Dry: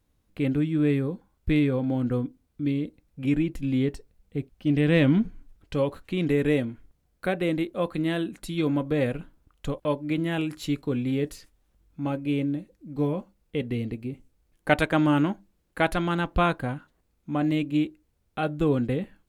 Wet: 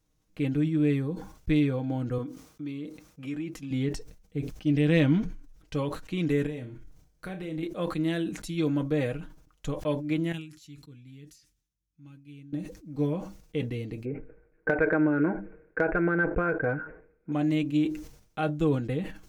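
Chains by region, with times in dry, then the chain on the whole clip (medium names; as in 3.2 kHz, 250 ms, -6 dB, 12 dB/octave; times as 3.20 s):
2.18–3.71 s: high-pass 250 Hz 6 dB/octave + compression 2:1, threshold -33 dBFS + peaking EQ 1.2 kHz +6.5 dB 0.36 oct
6.46–7.63 s: bass shelf 170 Hz +7 dB + compression 5:1, threshold -31 dBFS + flutter echo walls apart 5.5 m, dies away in 0.24 s
10.32–12.53 s: high-pass 66 Hz + amplifier tone stack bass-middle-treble 6-0-2
14.05–17.32 s: steep low-pass 2.5 kHz 96 dB/octave + small resonant body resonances 450/1500 Hz, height 17 dB, ringing for 25 ms + compression 12:1, threshold -17 dBFS
whole clip: peaking EQ 6 kHz +8.5 dB 0.55 oct; comb 6.4 ms, depth 49%; decay stretcher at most 91 dB/s; trim -4.5 dB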